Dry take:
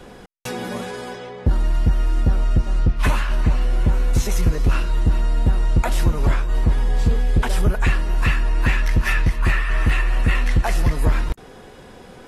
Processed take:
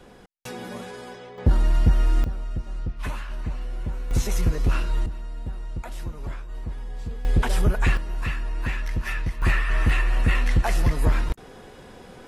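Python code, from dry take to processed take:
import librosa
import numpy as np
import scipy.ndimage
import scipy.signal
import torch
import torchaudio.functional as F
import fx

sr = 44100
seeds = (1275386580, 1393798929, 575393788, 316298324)

y = fx.gain(x, sr, db=fx.steps((0.0, -7.5), (1.38, -0.5), (2.24, -12.0), (4.11, -4.0), (5.06, -15.0), (7.25, -2.5), (7.97, -9.0), (9.42, -2.5)))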